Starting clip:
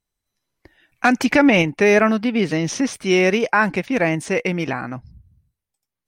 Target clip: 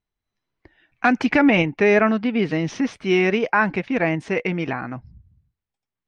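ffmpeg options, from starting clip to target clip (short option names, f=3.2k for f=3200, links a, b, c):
-af "lowpass=3.4k,bandreject=f=550:w=13,volume=-1.5dB"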